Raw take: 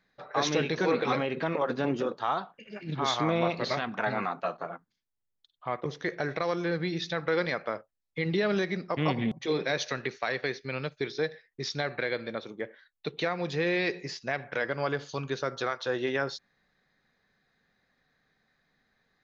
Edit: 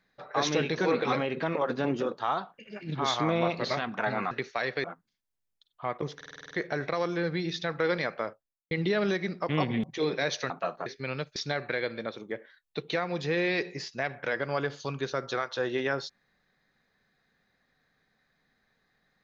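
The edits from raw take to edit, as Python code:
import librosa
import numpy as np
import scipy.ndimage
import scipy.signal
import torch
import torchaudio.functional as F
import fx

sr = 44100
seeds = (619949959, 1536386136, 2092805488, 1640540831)

y = fx.studio_fade_out(x, sr, start_s=7.73, length_s=0.46)
y = fx.edit(y, sr, fx.swap(start_s=4.31, length_s=0.36, other_s=9.98, other_length_s=0.53),
    fx.stutter(start_s=5.99, slice_s=0.05, count=8),
    fx.cut(start_s=11.01, length_s=0.64), tone=tone)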